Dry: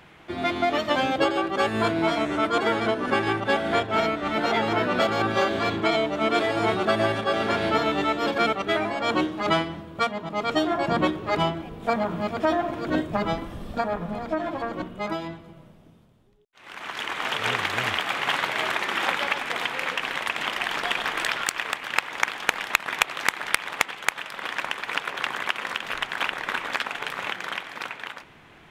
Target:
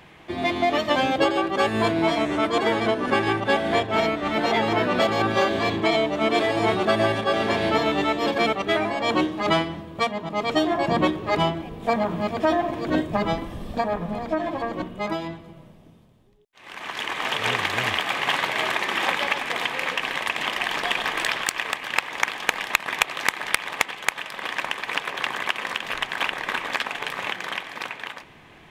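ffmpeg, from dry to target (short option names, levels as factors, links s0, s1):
-filter_complex "[0:a]bandreject=f=1400:w=7.8,asplit=2[s0][s1];[s1]asoftclip=type=hard:threshold=0.158,volume=0.282[s2];[s0][s2]amix=inputs=2:normalize=0"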